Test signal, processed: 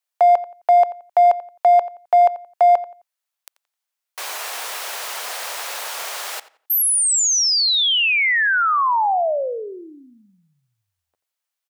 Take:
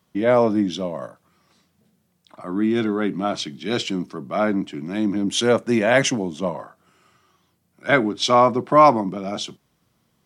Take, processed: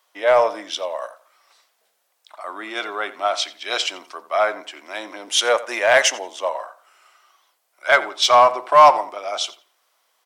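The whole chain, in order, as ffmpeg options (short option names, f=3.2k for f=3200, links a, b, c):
-filter_complex "[0:a]highpass=f=600:w=0.5412,highpass=f=600:w=1.3066,asplit=2[a][b];[b]asoftclip=type=hard:threshold=-16dB,volume=-5.5dB[c];[a][c]amix=inputs=2:normalize=0,asplit=2[d][e];[e]adelay=87,lowpass=f=3.4k:p=1,volume=-16dB,asplit=2[f][g];[g]adelay=87,lowpass=f=3.4k:p=1,volume=0.28,asplit=2[h][i];[i]adelay=87,lowpass=f=3.4k:p=1,volume=0.28[j];[d][f][h][j]amix=inputs=4:normalize=0,volume=1.5dB"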